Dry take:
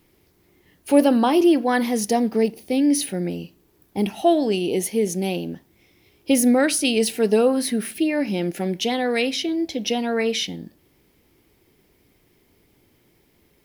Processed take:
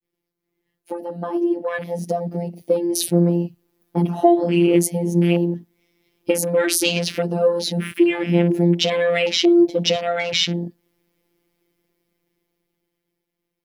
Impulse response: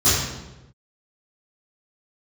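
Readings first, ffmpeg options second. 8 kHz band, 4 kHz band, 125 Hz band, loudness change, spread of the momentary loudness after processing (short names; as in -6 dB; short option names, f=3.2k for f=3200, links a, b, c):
+0.5 dB, +4.0 dB, +11.0 dB, +1.5 dB, 12 LU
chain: -af "acompressor=threshold=-21dB:ratio=12,bandreject=f=50:t=h:w=6,bandreject=f=100:t=h:w=6,bandreject=f=150:t=h:w=6,bandreject=f=200:t=h:w=6,bandreject=f=250:t=h:w=6,bandreject=f=300:t=h:w=6,bandreject=f=350:t=h:w=6,adynamicequalizer=threshold=0.0126:dfrequency=690:dqfactor=1.2:tfrequency=690:tqfactor=1.2:attack=5:release=100:ratio=0.375:range=1.5:mode=cutabove:tftype=bell,dynaudnorm=f=340:g=13:m=12dB,equalizer=f=410:t=o:w=0.76:g=3,agate=range=-33dB:threshold=-56dB:ratio=3:detection=peak,afftfilt=real='hypot(re,im)*cos(PI*b)':imag='0':win_size=1024:overlap=0.75,afwtdn=0.0316,volume=1.5dB"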